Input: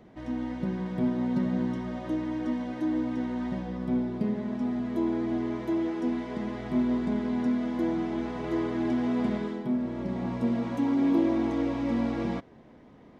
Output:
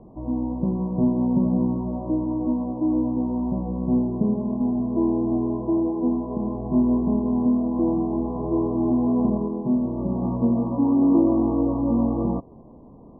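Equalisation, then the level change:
linear-phase brick-wall low-pass 1,200 Hz
high-frequency loss of the air 400 metres
low-shelf EQ 64 Hz +8.5 dB
+6.5 dB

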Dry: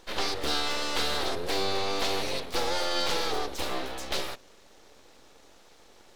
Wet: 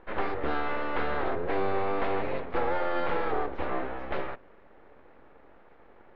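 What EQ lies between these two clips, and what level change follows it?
low-pass filter 2,000 Hz 24 dB per octave
+2.0 dB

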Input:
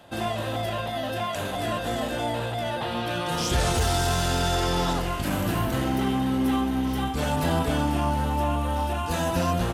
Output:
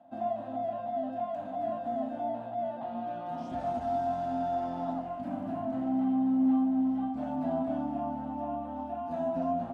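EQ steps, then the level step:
pair of resonant band-passes 420 Hz, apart 1.4 octaves
0.0 dB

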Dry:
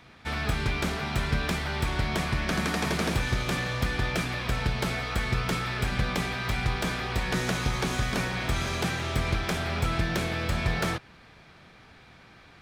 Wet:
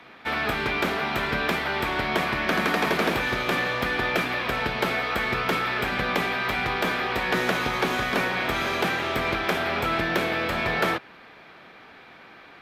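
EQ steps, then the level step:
three-way crossover with the lows and the highs turned down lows −18 dB, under 230 Hz, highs −15 dB, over 3,800 Hz
parametric band 13,000 Hz +15 dB 0.39 octaves
+7.0 dB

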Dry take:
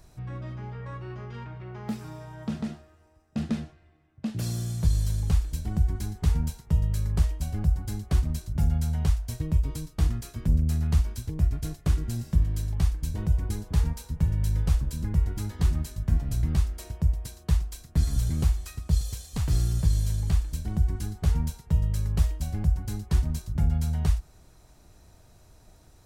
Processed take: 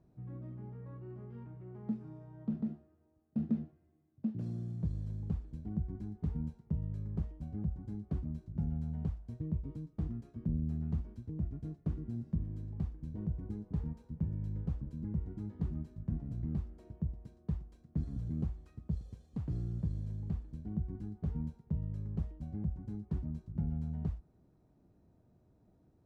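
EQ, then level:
resonant band-pass 230 Hz, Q 1.2
−3.5 dB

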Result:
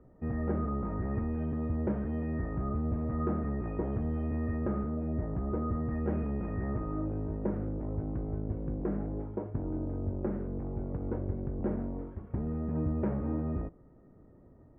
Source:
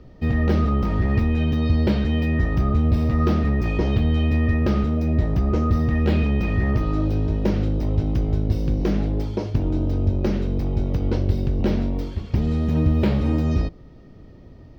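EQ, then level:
low-pass filter 1,600 Hz 24 dB per octave
high-frequency loss of the air 370 metres
low-shelf EQ 150 Hz −9 dB
−7.5 dB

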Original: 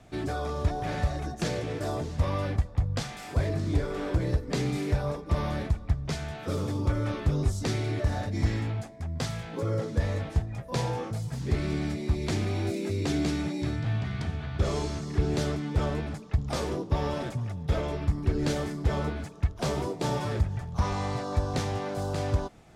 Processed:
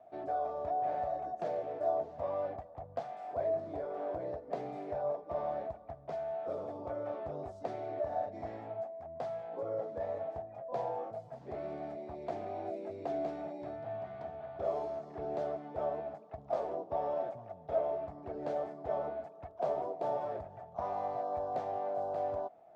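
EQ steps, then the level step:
resonant band-pass 670 Hz, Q 6.7
+7.0 dB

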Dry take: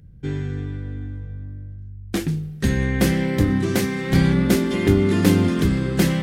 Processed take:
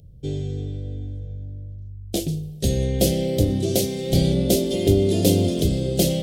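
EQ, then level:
drawn EQ curve 120 Hz 0 dB, 230 Hz −6 dB, 650 Hz +8 dB, 960 Hz −20 dB, 1,700 Hz −22 dB, 3,200 Hz +3 dB, 14,000 Hz +6 dB
0.0 dB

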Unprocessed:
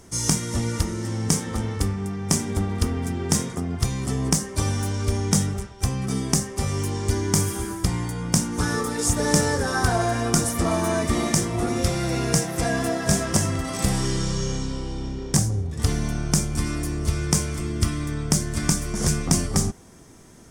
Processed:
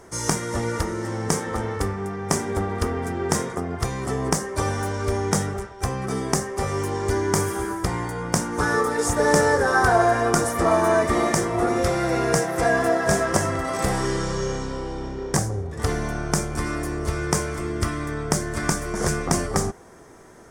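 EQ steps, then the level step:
flat-topped bell 840 Hz +10 dB 2.8 octaves
−3.5 dB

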